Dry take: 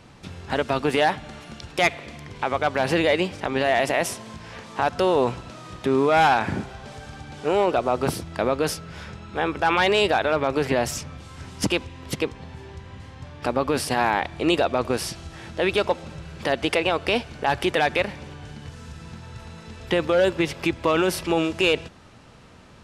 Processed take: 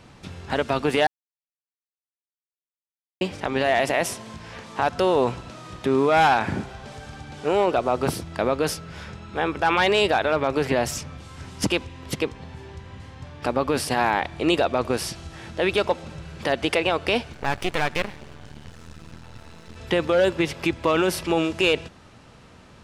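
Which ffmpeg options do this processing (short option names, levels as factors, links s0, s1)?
-filter_complex "[0:a]asettb=1/sr,asplit=3[s0][s1][s2];[s0]atrim=end=17.334[s3];[s1]atrim=start=17.33:end=19.76,asetpts=PTS-STARTPTS,afade=t=in:d=0.004:c=qsin,afade=t=out:st=2.426:d=0.004:c=qsin,aeval=exprs='max(val(0),0)':c=same[s4];[s2]atrim=start=19.756[s5];[s3][s4]acrossfade=d=0.004:c1=hsin:c2=qsin[s6];[s6][s5]acrossfade=d=0.004:c1=qsin:c2=hsin,asplit=3[s7][s8][s9];[s7]atrim=end=1.07,asetpts=PTS-STARTPTS,afade=t=out:st=1.066:d=0.004:c=hsin[s10];[s8]atrim=start=1.07:end=3.21,asetpts=PTS-STARTPTS,volume=0[s11];[s9]atrim=start=3.21,asetpts=PTS-STARTPTS,afade=t=in:d=0.004:c=hsin[s12];[s10][s11][s12]concat=n=3:v=0:a=1"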